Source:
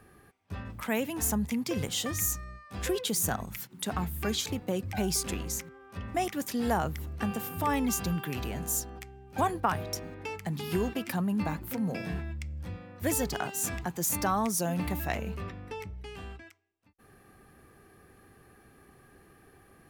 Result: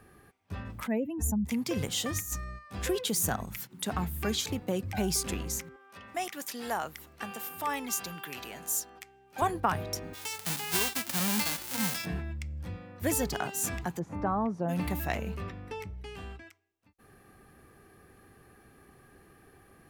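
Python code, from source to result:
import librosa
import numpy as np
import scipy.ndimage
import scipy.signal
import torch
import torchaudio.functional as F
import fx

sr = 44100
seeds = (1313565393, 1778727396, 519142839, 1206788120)

y = fx.spec_expand(x, sr, power=2.0, at=(0.86, 1.45), fade=0.02)
y = fx.over_compress(y, sr, threshold_db=-33.0, ratio=-0.5, at=(2.16, 2.59))
y = fx.highpass(y, sr, hz=880.0, slope=6, at=(5.76, 9.42))
y = fx.envelope_flatten(y, sr, power=0.1, at=(10.13, 12.04), fade=0.02)
y = fx.lowpass(y, sr, hz=1100.0, slope=12, at=(13.98, 14.68), fade=0.02)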